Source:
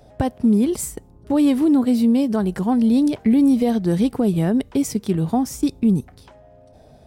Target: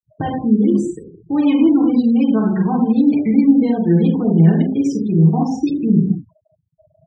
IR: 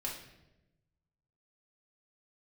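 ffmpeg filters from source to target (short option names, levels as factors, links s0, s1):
-filter_complex "[1:a]atrim=start_sample=2205,afade=t=out:st=0.19:d=0.01,atrim=end_sample=8820,asetrate=26460,aresample=44100[s0];[0:a][s0]afir=irnorm=-1:irlink=0,afftfilt=real='re*gte(hypot(re,im),0.0501)':imag='im*gte(hypot(re,im),0.0501)':win_size=1024:overlap=0.75,highpass=140,equalizer=f=170:t=q:w=4:g=6,equalizer=f=580:t=q:w=4:g=-9,equalizer=f=2400:t=q:w=4:g=7,lowpass=f=5500:w=0.5412,lowpass=f=5500:w=1.3066,volume=0.891"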